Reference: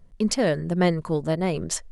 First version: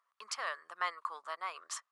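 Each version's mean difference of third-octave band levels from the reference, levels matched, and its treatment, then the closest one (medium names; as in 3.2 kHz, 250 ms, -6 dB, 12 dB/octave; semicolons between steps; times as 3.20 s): 13.0 dB: ladder high-pass 1.1 kHz, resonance 80%; treble shelf 7.7 kHz -7 dB; trim +2 dB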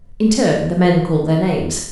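5.5 dB: bass shelf 350 Hz +4.5 dB; Schroeder reverb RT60 0.65 s, combs from 25 ms, DRR 0 dB; trim +3 dB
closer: second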